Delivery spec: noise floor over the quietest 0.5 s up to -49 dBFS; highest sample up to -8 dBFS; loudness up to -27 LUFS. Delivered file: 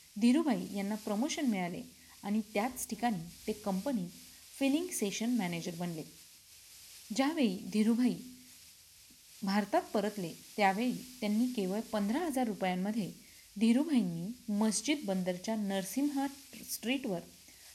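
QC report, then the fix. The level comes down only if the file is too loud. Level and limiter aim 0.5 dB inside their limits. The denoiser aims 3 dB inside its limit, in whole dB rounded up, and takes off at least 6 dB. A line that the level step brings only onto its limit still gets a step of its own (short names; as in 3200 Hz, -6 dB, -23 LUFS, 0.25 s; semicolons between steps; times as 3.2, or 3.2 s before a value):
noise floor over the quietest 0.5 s -59 dBFS: OK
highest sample -15.0 dBFS: OK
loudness -34.0 LUFS: OK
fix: none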